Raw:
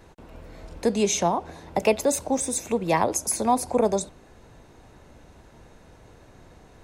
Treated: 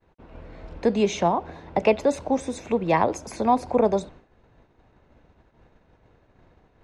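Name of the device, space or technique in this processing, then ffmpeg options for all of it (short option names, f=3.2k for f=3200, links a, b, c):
hearing-loss simulation: -af "lowpass=3.2k,agate=range=-33dB:threshold=-42dB:ratio=3:detection=peak,volume=1.5dB"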